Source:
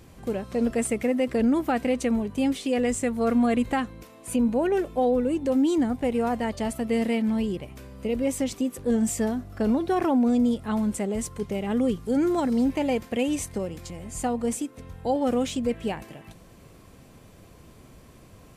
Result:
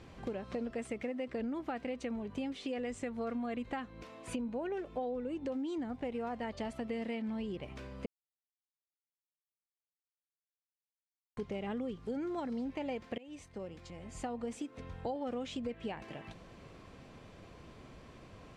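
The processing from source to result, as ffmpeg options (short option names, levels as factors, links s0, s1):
-filter_complex "[0:a]asplit=4[s0][s1][s2][s3];[s0]atrim=end=8.06,asetpts=PTS-STARTPTS,afade=t=out:st=8.056:d=0.004:c=hsin[s4];[s1]atrim=start=8.06:end=11.37,asetpts=PTS-STARTPTS,volume=0[s5];[s2]atrim=start=11.37:end=13.18,asetpts=PTS-STARTPTS,afade=t=in:d=0.004:c=hsin,afade=t=out:st=1.806:d=0.004:c=hsin:silence=0.0630957[s6];[s3]atrim=start=13.18,asetpts=PTS-STARTPTS,afade=t=in:d=1.84:silence=0.0630957[s7];[s4][s5][s6][s7]concat=n=4:v=0:a=1,lowpass=4300,lowshelf=f=330:g=-5,acompressor=threshold=0.0158:ratio=6"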